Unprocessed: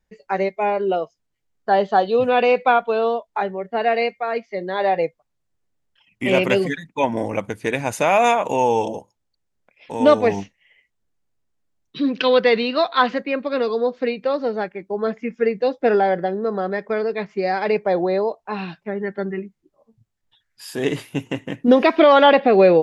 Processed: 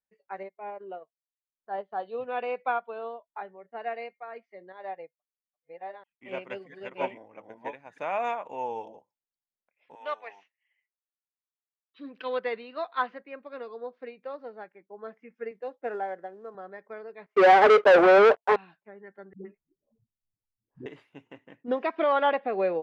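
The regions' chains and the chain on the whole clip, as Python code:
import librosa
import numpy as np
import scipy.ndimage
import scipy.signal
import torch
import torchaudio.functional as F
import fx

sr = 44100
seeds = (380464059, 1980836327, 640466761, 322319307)

y = fx.chain(x, sr, fx.high_shelf(hz=2000.0, db=-6.0),
    fx.transient(attack_db=-4, sustain_db=-10), at=(0.43, 2.0))
y = fx.chain(y, sr, fx.reverse_delay(ms=659, wet_db=-1.0),
    fx.upward_expand(threshold_db=-36.0, expansion=1.5), at=(4.72, 7.98))
y = fx.chain(y, sr, fx.highpass(hz=900.0, slope=12),
    fx.dynamic_eq(hz=2600.0, q=1.5, threshold_db=-42.0, ratio=4.0, max_db=4), at=(9.95, 11.99))
y = fx.chain(y, sr, fx.bandpass_edges(low_hz=200.0, high_hz=3300.0),
    fx.quant_float(bits=4), at=(15.51, 16.55))
y = fx.chain(y, sr, fx.highpass_res(hz=440.0, q=3.1),
    fx.leveller(passes=5), at=(17.26, 18.56))
y = fx.chain(y, sr, fx.env_lowpass(base_hz=320.0, full_db=-25.5),
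    fx.tilt_eq(slope=-4.5),
    fx.dispersion(late='highs', ms=118.0, hz=350.0), at=(19.33, 20.86))
y = scipy.signal.sosfilt(scipy.signal.butter(2, 1400.0, 'lowpass', fs=sr, output='sos'), y)
y = fx.tilt_eq(y, sr, slope=4.0)
y = fx.upward_expand(y, sr, threshold_db=-28.0, expansion=1.5)
y = y * librosa.db_to_amplitude(-6.0)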